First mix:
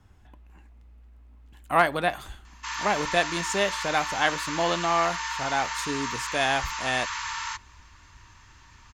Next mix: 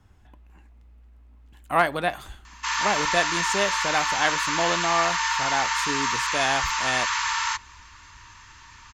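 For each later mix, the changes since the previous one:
background +7.0 dB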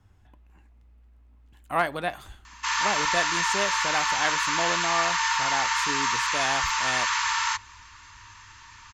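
speech -4.0 dB; master: add bell 100 Hz +7 dB 0.2 oct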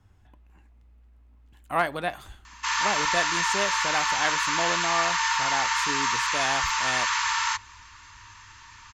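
none

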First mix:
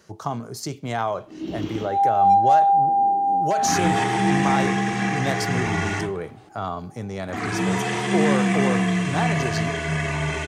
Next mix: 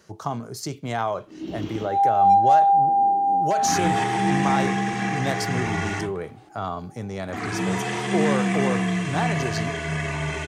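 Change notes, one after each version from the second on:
reverb: off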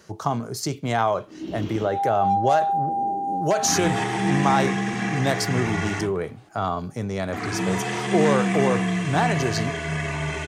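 speech +4.0 dB; second sound -6.0 dB

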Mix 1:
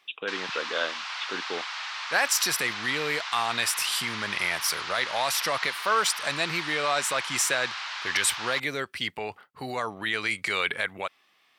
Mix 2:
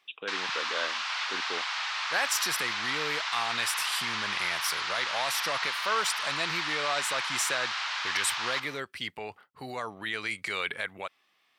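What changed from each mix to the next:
speech -5.0 dB; reverb: on, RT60 1.4 s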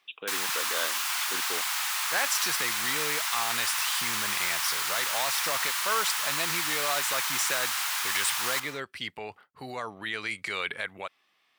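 background: remove LPF 4800 Hz 24 dB/oct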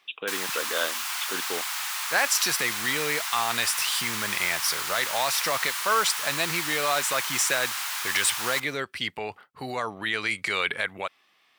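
speech +5.5 dB; background: send -7.0 dB

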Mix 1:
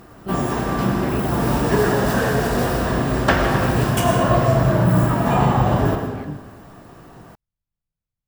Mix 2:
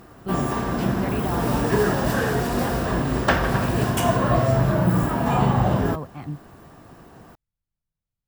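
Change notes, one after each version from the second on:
reverb: off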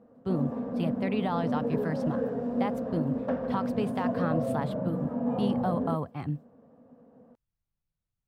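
background: add double band-pass 350 Hz, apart 1 oct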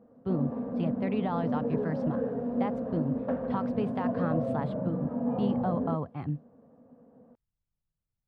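master: add tape spacing loss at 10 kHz 21 dB

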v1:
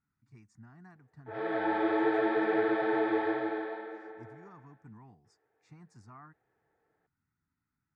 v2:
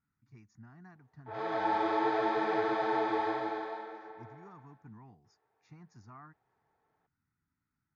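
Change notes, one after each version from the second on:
speech: add brick-wall FIR low-pass 7000 Hz; background: remove speaker cabinet 110–3600 Hz, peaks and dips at 310 Hz +6 dB, 490 Hz +6 dB, 1000 Hz -9 dB, 1700 Hz +5 dB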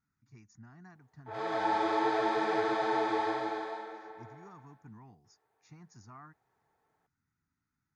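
master: remove air absorption 130 m

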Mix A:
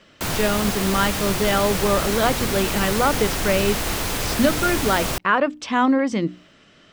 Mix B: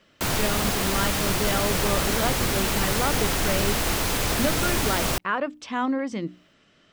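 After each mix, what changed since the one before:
speech -7.5 dB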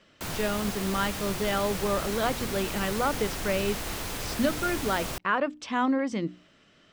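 background -9.5 dB

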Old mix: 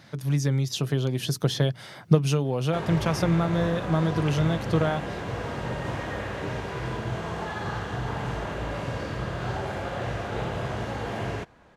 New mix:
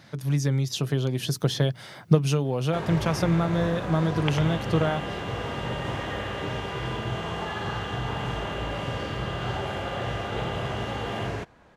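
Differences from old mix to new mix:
second sound +8.0 dB; reverb: on, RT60 1.5 s

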